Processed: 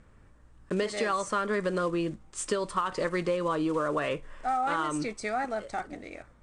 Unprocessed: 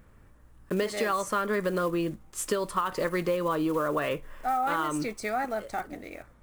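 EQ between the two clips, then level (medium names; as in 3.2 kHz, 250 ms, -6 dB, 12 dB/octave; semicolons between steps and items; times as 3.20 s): elliptic low-pass 8.9 kHz, stop band 50 dB; 0.0 dB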